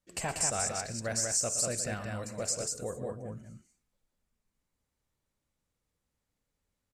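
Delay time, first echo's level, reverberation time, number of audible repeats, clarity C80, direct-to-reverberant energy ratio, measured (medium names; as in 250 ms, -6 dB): 55 ms, -19.5 dB, no reverb, 3, no reverb, no reverb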